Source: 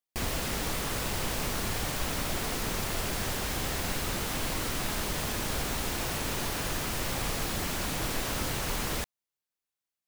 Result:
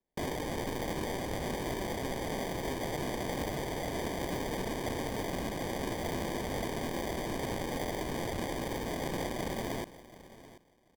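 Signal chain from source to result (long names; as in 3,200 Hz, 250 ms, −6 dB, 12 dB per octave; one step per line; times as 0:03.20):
high-pass filter 260 Hz 24 dB per octave
in parallel at +2.5 dB: brickwall limiter −32 dBFS, peak gain reduction 10.5 dB
on the sum: tape wow and flutter 22 cents
decimation without filtering 30×
on a send: repeating echo 675 ms, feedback 17%, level −17 dB
on the sum: wrong playback speed 48 kHz file played as 44.1 kHz
level −5 dB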